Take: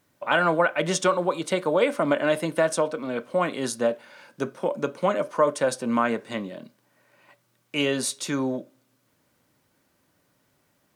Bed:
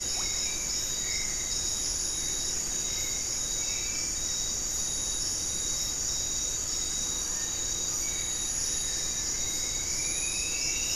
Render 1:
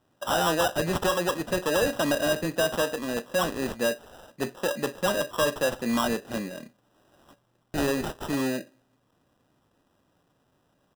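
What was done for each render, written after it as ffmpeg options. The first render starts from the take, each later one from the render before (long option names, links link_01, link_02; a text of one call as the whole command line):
ffmpeg -i in.wav -af "aresample=16000,asoftclip=type=tanh:threshold=-17.5dB,aresample=44100,acrusher=samples=20:mix=1:aa=0.000001" out.wav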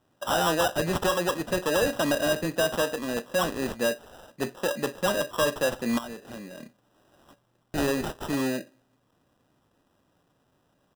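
ffmpeg -i in.wav -filter_complex "[0:a]asettb=1/sr,asplit=3[link_01][link_02][link_03];[link_01]atrim=end=5.984[link_04];[link_02]atrim=start=5.98:end=6.59,asetpts=PTS-STARTPTS,afade=type=in:duration=0.004:curve=qsin,afade=type=out:start_time=0.606:duration=0.004:curve=qsin,acompressor=threshold=-39dB:ratio=3:attack=3.2:release=140:knee=1:detection=peak[link_05];[link_03]atrim=start=6.586[link_06];[link_04][link_05]acrossfade=duration=0.004:curve1=hsin:curve2=qsin[link_07];[link_07][link_06]acrossfade=duration=0.004:curve1=qsin:curve2=hsin" out.wav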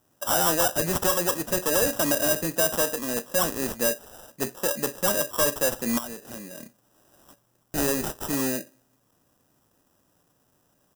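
ffmpeg -i in.wav -af "aexciter=amount=4.3:drive=2.5:freq=5400,aeval=exprs='(tanh(2.82*val(0)+0.15)-tanh(0.15))/2.82':channel_layout=same" out.wav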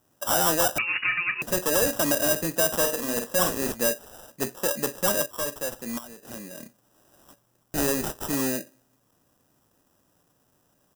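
ffmpeg -i in.wav -filter_complex "[0:a]asettb=1/sr,asplit=3[link_01][link_02][link_03];[link_01]atrim=end=0.784[link_04];[link_02]atrim=start=0.78:end=1.42,asetpts=PTS-STARTPTS,afade=type=in:duration=0.004:curve=qsin,afade=type=out:start_time=0.636:duration=0.004:curve=qsin,lowpass=frequency=2500:width_type=q:width=0.5098,lowpass=frequency=2500:width_type=q:width=0.6013,lowpass=frequency=2500:width_type=q:width=0.9,lowpass=frequency=2500:width_type=q:width=2.563,afreqshift=-2900[link_05];[link_03]atrim=start=1.416[link_06];[link_04][link_05]acrossfade=duration=0.004:curve1=hsin:curve2=qsin[link_07];[link_07][link_06]acrossfade=duration=0.004:curve1=qsin:curve2=hsin,asettb=1/sr,asplit=3[link_08][link_09][link_10];[link_08]atrim=end=2.774[link_11];[link_09]atrim=start=2.77:end=3.72,asetpts=PTS-STARTPTS,afade=type=in:duration=0.004:curve=qsin,afade=type=out:start_time=0.946:duration=0.004:curve=qsin,asplit=2[link_12][link_13];[link_13]adelay=50,volume=-6dB[link_14];[link_12][link_14]amix=inputs=2:normalize=0,atrim=end_sample=41895[link_15];[link_10]atrim=start=3.716[link_16];[link_11][link_15]acrossfade=duration=0.004:curve1=hsin:curve2=qsin[link_17];[link_17][link_16]acrossfade=duration=0.004:curve1=qsin:curve2=hsin,asplit=3[link_18][link_19][link_20];[link_18]atrim=end=5.262[link_21];[link_19]atrim=start=5.258:end=6.232,asetpts=PTS-STARTPTS,volume=-7dB[link_22];[link_20]atrim=start=6.228[link_23];[link_21][link_22]acrossfade=duration=0.004:curve1=hsin:curve2=hsin[link_24];[link_24][link_23]acrossfade=duration=0.004:curve1=hsin:curve2=hsin" out.wav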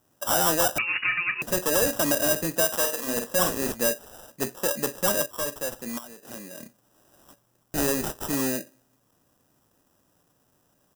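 ffmpeg -i in.wav -filter_complex "[0:a]asettb=1/sr,asplit=3[link_01][link_02][link_03];[link_01]atrim=end=2.654[link_04];[link_02]atrim=start=2.65:end=3.07,asetpts=PTS-STARTPTS,afade=type=in:duration=0.004:curve=qsin,afade=type=out:start_time=0.416:duration=0.004:curve=qsin,lowshelf=frequency=370:gain=-9.5[link_05];[link_03]atrim=start=3.066[link_06];[link_04][link_05]acrossfade=duration=0.004:curve1=hsin:curve2=qsin[link_07];[link_07][link_06]acrossfade=duration=0.004:curve1=qsin:curve2=hsin,asettb=1/sr,asplit=3[link_08][link_09][link_10];[link_08]atrim=end=5.894[link_11];[link_09]atrim=start=5.89:end=6.61,asetpts=PTS-STARTPTS,afade=type=in:duration=0.004:curve=qsin,afade=type=out:start_time=0.716:duration=0.004:curve=qsin,lowshelf=frequency=120:gain=-8.5[link_12];[link_10]atrim=start=6.606[link_13];[link_11][link_12]acrossfade=duration=0.004:curve1=hsin:curve2=qsin[link_14];[link_14][link_13]acrossfade=duration=0.004:curve1=qsin:curve2=hsin" out.wav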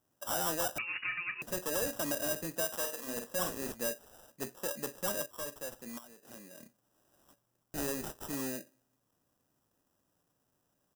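ffmpeg -i in.wav -af "volume=-11dB" out.wav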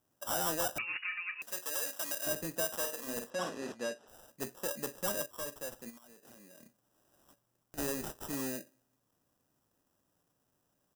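ffmpeg -i in.wav -filter_complex "[0:a]asettb=1/sr,asplit=3[link_01][link_02][link_03];[link_01]atrim=end=0.974[link_04];[link_02]atrim=start=0.97:end=2.27,asetpts=PTS-STARTPTS,afade=type=in:duration=0.004:curve=qsin,afade=type=out:start_time=1.296:duration=0.004:curve=qsin,highpass=frequency=1500:poles=1[link_05];[link_03]atrim=start=2.266[link_06];[link_04][link_05]acrossfade=duration=0.004:curve1=hsin:curve2=qsin[link_07];[link_07][link_06]acrossfade=duration=0.004:curve1=qsin:curve2=hsin,asplit=3[link_08][link_09][link_10];[link_08]afade=type=out:start_time=3.29:duration=0.02[link_11];[link_09]highpass=170,lowpass=5100,afade=type=in:start_time=3.29:duration=0.02,afade=type=out:start_time=4.07:duration=0.02[link_12];[link_10]afade=type=in:start_time=4.07:duration=0.02[link_13];[link_11][link_12][link_13]amix=inputs=3:normalize=0,asplit=3[link_14][link_15][link_16];[link_14]afade=type=out:start_time=5.89:duration=0.02[link_17];[link_15]acompressor=threshold=-51dB:ratio=8:attack=3.2:release=140:knee=1:detection=peak,afade=type=in:start_time=5.89:duration=0.02,afade=type=out:start_time=7.77:duration=0.02[link_18];[link_16]afade=type=in:start_time=7.77:duration=0.02[link_19];[link_17][link_18][link_19]amix=inputs=3:normalize=0" out.wav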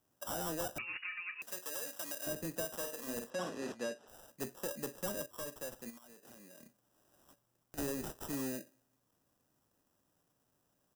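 ffmpeg -i in.wav -filter_complex "[0:a]acrossover=split=490[link_01][link_02];[link_02]acompressor=threshold=-42dB:ratio=2[link_03];[link_01][link_03]amix=inputs=2:normalize=0" out.wav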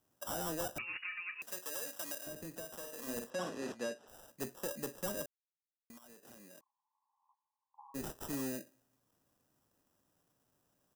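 ffmpeg -i in.wav -filter_complex "[0:a]asettb=1/sr,asplit=3[link_01][link_02][link_03];[link_01]atrim=end=2.184[link_04];[link_02]atrim=start=2.18:end=2.96,asetpts=PTS-STARTPTS,afade=type=in:duration=0.004:curve=qsin,afade=type=out:start_time=0.776:duration=0.004:curve=qsin,acompressor=threshold=-46dB:ratio=2:attack=3.2:release=140:knee=1:detection=peak[link_05];[link_03]atrim=start=2.956[link_06];[link_04][link_05]acrossfade=duration=0.004:curve1=hsin:curve2=qsin[link_07];[link_07][link_06]acrossfade=duration=0.004:curve1=qsin:curve2=hsin,asplit=3[link_08][link_09][link_10];[link_08]afade=type=out:start_time=6.59:duration=0.02[link_11];[link_09]asuperpass=centerf=950:order=12:qfactor=3.1,afade=type=in:start_time=6.59:duration=0.02,afade=type=out:start_time=7.94:duration=0.02[link_12];[link_10]afade=type=in:start_time=7.94:duration=0.02[link_13];[link_11][link_12][link_13]amix=inputs=3:normalize=0,asplit=3[link_14][link_15][link_16];[link_14]atrim=end=5.26,asetpts=PTS-STARTPTS,afade=type=out:start_time=5.256:duration=0.004:curve=hsin[link_17];[link_15]atrim=start=5.26:end=5.9,asetpts=PTS-STARTPTS,volume=0[link_18];[link_16]atrim=start=5.9,asetpts=PTS-STARTPTS,afade=type=in:duration=0.004:curve=hsin[link_19];[link_17][link_18][link_19]concat=n=3:v=0:a=1" out.wav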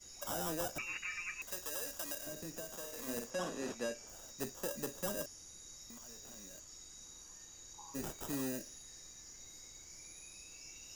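ffmpeg -i in.wav -i bed.wav -filter_complex "[1:a]volume=-23dB[link_01];[0:a][link_01]amix=inputs=2:normalize=0" out.wav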